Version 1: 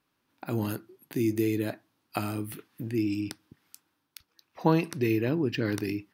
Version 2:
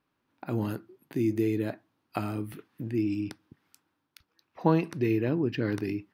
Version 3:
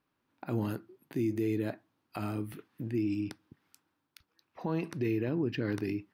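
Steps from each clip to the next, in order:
high-shelf EQ 3,600 Hz −11 dB
brickwall limiter −20.5 dBFS, peak gain reduction 11.5 dB; level −2 dB

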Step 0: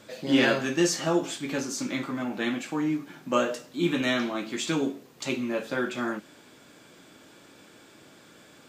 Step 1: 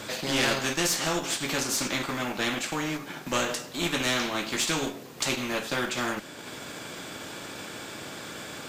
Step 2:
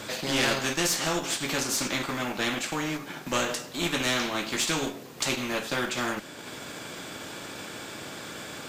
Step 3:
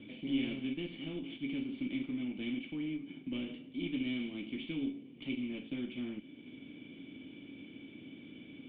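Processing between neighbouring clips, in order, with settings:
one-sided soft clipper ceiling −15 dBFS; transient designer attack 0 dB, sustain −5 dB; every bin compressed towards the loudest bin 2 to 1
no processing that can be heard
formant resonators in series i

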